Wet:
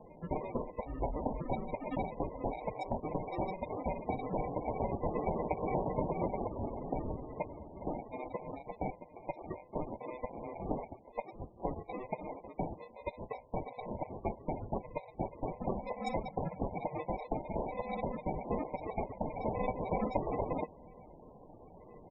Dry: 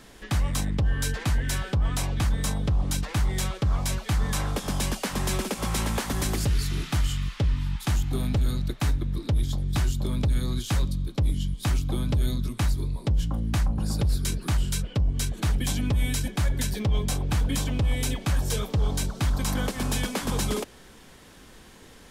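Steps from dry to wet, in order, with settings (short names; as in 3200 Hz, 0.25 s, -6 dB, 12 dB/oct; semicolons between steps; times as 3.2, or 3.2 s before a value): FFT band-pass 470–7400 Hz; comb 6.5 ms, depth 55%; flange 0.74 Hz, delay 4.4 ms, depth 4.1 ms, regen -8%; sample-and-hold 29×; loudest bins only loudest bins 32; 2.61–3.35 three-band squash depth 70%; gain +3 dB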